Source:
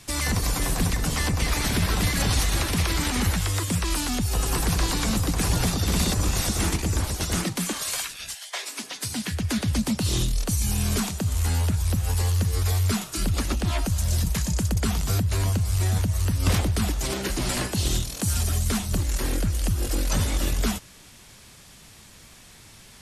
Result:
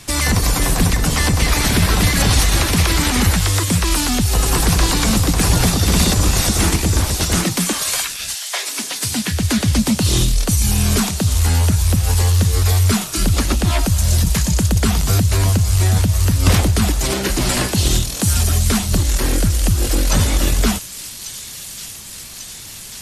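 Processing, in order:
delay with a high-pass on its return 1,143 ms, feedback 72%, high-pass 3,500 Hz, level −8.5 dB
level +8.5 dB

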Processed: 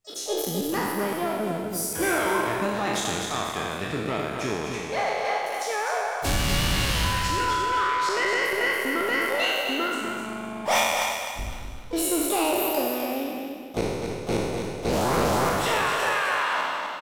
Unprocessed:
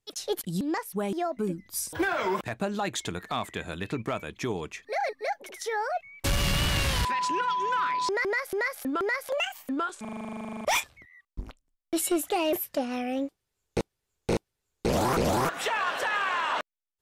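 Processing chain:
peak hold with a decay on every bin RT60 1.61 s
pitch-shifted copies added +5 semitones −16 dB, +7 semitones −12 dB
repeating echo 254 ms, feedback 29%, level −6 dB
level −2 dB

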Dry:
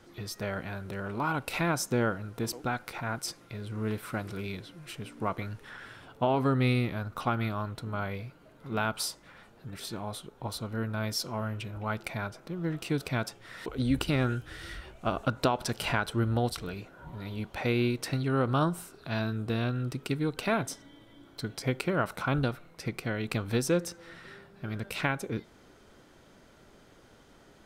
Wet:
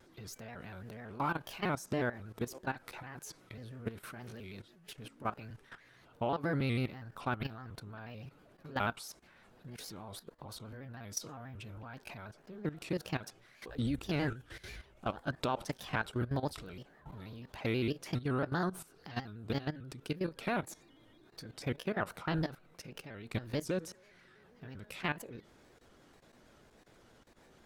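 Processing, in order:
pitch shifter gated in a rhythm +2.5 semitones, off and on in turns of 275 ms
output level in coarse steps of 15 dB
pitch modulation by a square or saw wave square 6.2 Hz, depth 100 cents
level −2 dB

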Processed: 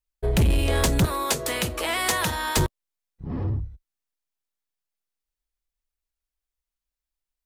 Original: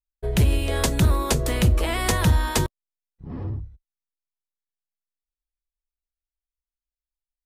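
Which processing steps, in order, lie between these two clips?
0:01.05–0:02.57: high-pass filter 750 Hz 6 dB per octave
soft clipping −19 dBFS, distortion −11 dB
level +4 dB

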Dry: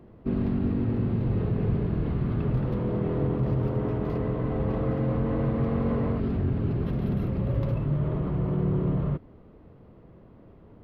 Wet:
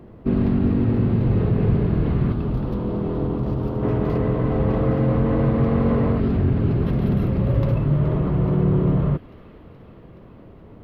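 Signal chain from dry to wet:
0:02.32–0:03.83: graphic EQ with 10 bands 125 Hz −7 dB, 500 Hz −5 dB, 2,000 Hz −10 dB
delay with a high-pass on its return 423 ms, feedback 72%, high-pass 1,800 Hz, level −13.5 dB
level +7 dB

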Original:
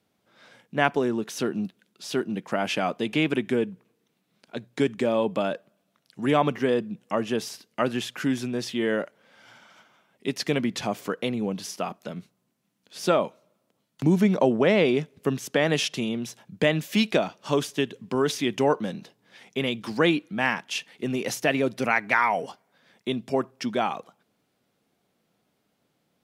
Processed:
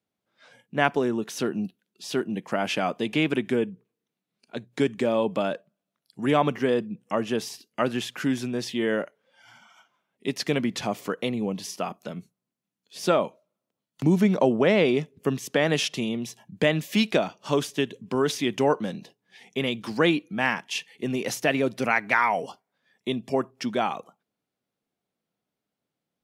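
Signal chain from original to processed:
noise reduction from a noise print of the clip's start 13 dB

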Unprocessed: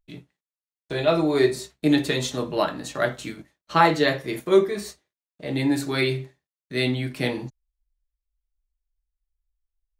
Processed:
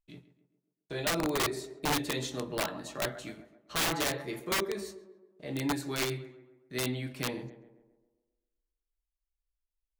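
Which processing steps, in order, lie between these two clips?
tape delay 133 ms, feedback 56%, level −13 dB, low-pass 1,600 Hz
wrap-around overflow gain 14.5 dB
level −9 dB

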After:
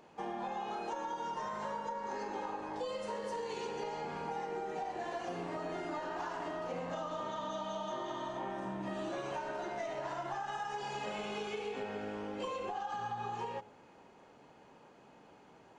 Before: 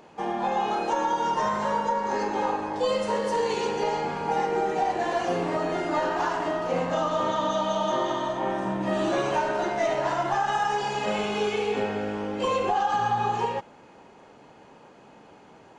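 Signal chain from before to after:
hum removal 105.2 Hz, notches 8
downward compressor, threshold −28 dBFS, peak gain reduction 8 dB
level −8 dB

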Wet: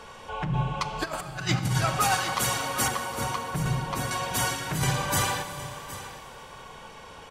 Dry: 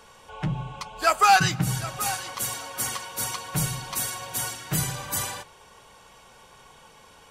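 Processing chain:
low-pass filter 3,800 Hz 6 dB per octave, from 0:02.88 1,000 Hz, from 0:04.11 3,400 Hz
compressor whose output falls as the input rises −29 dBFS, ratio −0.5
single-tap delay 765 ms −15 dB
four-comb reverb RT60 2.8 s, combs from 29 ms, DRR 9.5 dB
level +3.5 dB

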